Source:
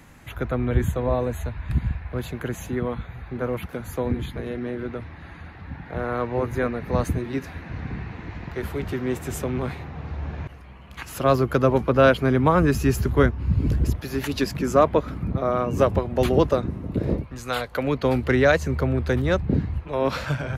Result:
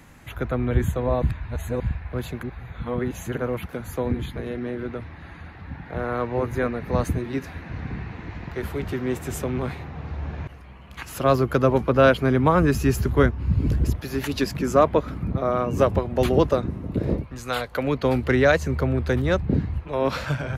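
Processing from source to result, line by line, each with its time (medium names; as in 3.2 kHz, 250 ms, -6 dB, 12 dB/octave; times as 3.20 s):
1.22–1.80 s: reverse
2.43–3.38 s: reverse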